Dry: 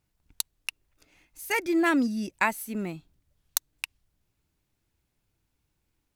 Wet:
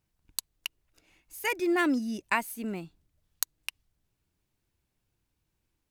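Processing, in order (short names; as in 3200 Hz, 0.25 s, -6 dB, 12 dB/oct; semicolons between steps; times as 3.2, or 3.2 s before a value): speed mistake 24 fps film run at 25 fps; gain -2.5 dB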